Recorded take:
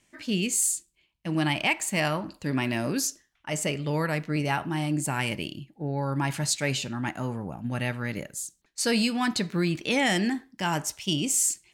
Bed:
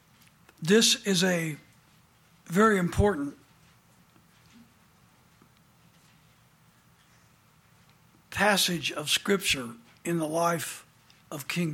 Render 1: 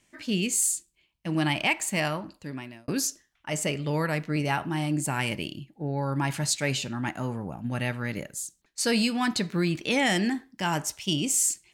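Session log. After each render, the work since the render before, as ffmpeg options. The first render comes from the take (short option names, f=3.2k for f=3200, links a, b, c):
-filter_complex "[0:a]asplit=2[a][b];[a]atrim=end=2.88,asetpts=PTS-STARTPTS,afade=t=out:st=1.89:d=0.99[c];[b]atrim=start=2.88,asetpts=PTS-STARTPTS,afade=t=in:d=0.004:c=hsin[d];[c][d]concat=n=2:v=0:a=1"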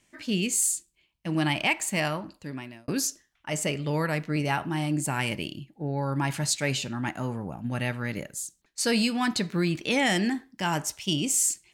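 -af anull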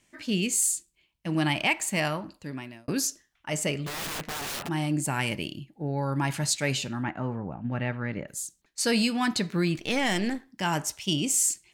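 -filter_complex "[0:a]asplit=3[a][b][c];[a]afade=t=out:st=3.86:d=0.02[d];[b]aeval=exprs='(mod(28.2*val(0)+1,2)-1)/28.2':c=same,afade=t=in:st=3.86:d=0.02,afade=t=out:st=4.67:d=0.02[e];[c]afade=t=in:st=4.67:d=0.02[f];[d][e][f]amix=inputs=3:normalize=0,asettb=1/sr,asplit=3[g][h][i];[g]atrim=end=7.034[j];[h]atrim=start=7.03:end=8.28,asetpts=PTS-STARTPTS,afade=t=in:d=0.004:c=qsin,afade=t=out:st=1.246:d=0.004:c=qsin,lowpass=2.2k[k];[i]atrim=start=8.276[l];[j][k]acrossfade=d=0.004:c1=hsin:c2=qsin[m];[m][l]acrossfade=d=0.004:c1=qsin:c2=hsin,asettb=1/sr,asplit=3[n][o][p];[n]atrim=end=9.784[q];[o]atrim=start=9.78:end=10.48,asetpts=PTS-STARTPTS,afade=t=in:d=0.004:c=qsin,afade=t=out:st=0.696:d=0.004:c=qsin,aeval=exprs='if(lt(val(0),0),0.447*val(0),val(0))':c=same[r];[p]atrim=start=10.476[s];[q][r]acrossfade=d=0.004:c1=hsin:c2=qsin[t];[t][s]acrossfade=d=0.004:c1=qsin:c2=hsin"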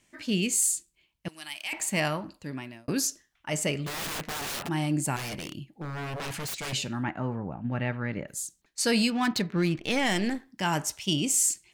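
-filter_complex "[0:a]asettb=1/sr,asplit=3[a][b][c];[a]atrim=end=1.284[d];[b]atrim=start=1.28:end=1.73,asetpts=PTS-STARTPTS,afade=t=in:d=0.004:c=qsin,afade=t=out:st=0.446:d=0.004:c=qsin,aderivative[e];[c]atrim=start=1.726[f];[d][e]acrossfade=d=0.004:c1=hsin:c2=qsin[g];[g][f]acrossfade=d=0.004:c1=qsin:c2=hsin,asettb=1/sr,asplit=3[h][i][j];[h]atrim=end=5.164[k];[i]atrim=start=5.16:end=6.73,asetpts=PTS-STARTPTS,afade=t=in:d=0.004:c=qsin,afade=t=out:st=1.566:d=0.004:c=qsin,aeval=exprs='0.0335*(abs(mod(val(0)/0.0335+3,4)-2)-1)':c=same[l];[j]atrim=start=6.726[m];[k][l]acrossfade=d=0.004:c1=hsin:c2=qsin[n];[n][m]acrossfade=d=0.004:c1=qsin:c2=hsin,asettb=1/sr,asplit=3[o][p][q];[o]atrim=end=9.104[r];[p]atrim=start=9.1:end=9.84,asetpts=PTS-STARTPTS,afade=t=in:d=0.004:c=qsin,afade=t=out:st=0.736:d=0.004:c=qsin,adynamicsmooth=sensitivity=6:basefreq=1.9k[s];[q]atrim=start=9.836[t];[r][s]acrossfade=d=0.004:c1=hsin:c2=qsin[u];[u][t]acrossfade=d=0.004:c1=qsin:c2=hsin"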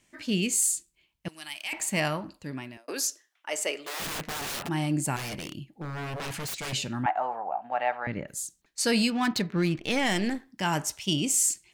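-filter_complex "[0:a]asettb=1/sr,asplit=3[a][b][c];[a]atrim=end=2.774[d];[b]atrim=start=2.77:end=4,asetpts=PTS-STARTPTS,afade=t=in:d=0.004:c=qsin,afade=t=out:st=1.226:d=0.004:c=qsin,highpass=f=380:w=0.5412,highpass=f=380:w=1.3066[e];[c]atrim=start=3.996[f];[d][e]acrossfade=d=0.004:c1=hsin:c2=qsin[g];[g][f]acrossfade=d=0.004:c1=qsin:c2=hsin,asettb=1/sr,asplit=3[h][i][j];[h]atrim=end=7.064[k];[i]atrim=start=7.06:end=8.07,asetpts=PTS-STARTPTS,afade=t=in:d=0.004:c=qsin,afade=t=out:st=1.006:d=0.004:c=qsin,highpass=f=740:t=q:w=7[l];[j]atrim=start=8.066[m];[k][l]acrossfade=d=0.004:c1=hsin:c2=qsin[n];[n][m]acrossfade=d=0.004:c1=qsin:c2=hsin"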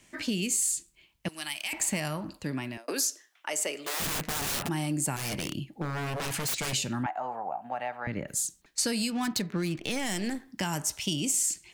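-filter_complex "[0:a]asplit=2[a][b];[b]alimiter=limit=-19dB:level=0:latency=1:release=195,volume=2dB[c];[a][c]amix=inputs=2:normalize=0,acrossover=split=220|6100[d][e][f];[d]acompressor=threshold=-36dB:ratio=4[g];[e]acompressor=threshold=-33dB:ratio=4[h];[f]acompressor=threshold=-29dB:ratio=4[i];[g][h][i]amix=inputs=3:normalize=0"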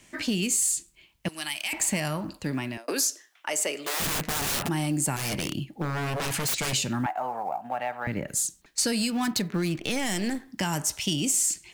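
-filter_complex "[0:a]asplit=2[a][b];[b]asoftclip=type=tanh:threshold=-25.5dB,volume=-5dB[c];[a][c]amix=inputs=2:normalize=0,acrusher=bits=9:mode=log:mix=0:aa=0.000001"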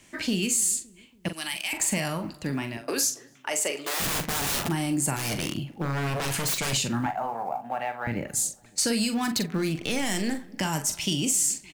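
-filter_complex "[0:a]asplit=2[a][b];[b]adelay=43,volume=-9dB[c];[a][c]amix=inputs=2:normalize=0,asplit=2[d][e];[e]adelay=282,lowpass=f=1k:p=1,volume=-22dB,asplit=2[f][g];[g]adelay=282,lowpass=f=1k:p=1,volume=0.54,asplit=2[h][i];[i]adelay=282,lowpass=f=1k:p=1,volume=0.54,asplit=2[j][k];[k]adelay=282,lowpass=f=1k:p=1,volume=0.54[l];[d][f][h][j][l]amix=inputs=5:normalize=0"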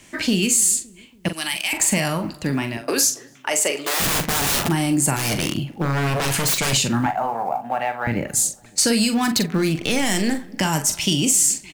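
-af "volume=7dB"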